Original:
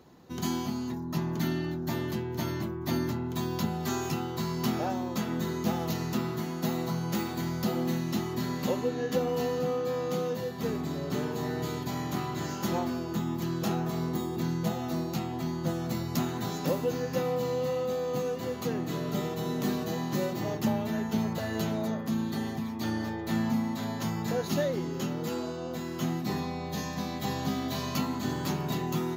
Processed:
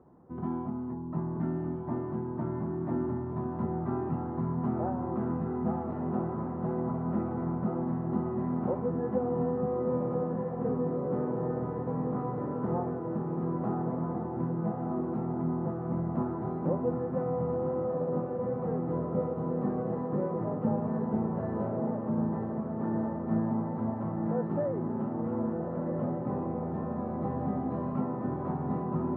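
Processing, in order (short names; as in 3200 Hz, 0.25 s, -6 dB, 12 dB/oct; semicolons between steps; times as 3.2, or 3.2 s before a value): LPF 1200 Hz 24 dB/oct; diffused feedback echo 1.382 s, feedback 57%, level -4 dB; gain -2 dB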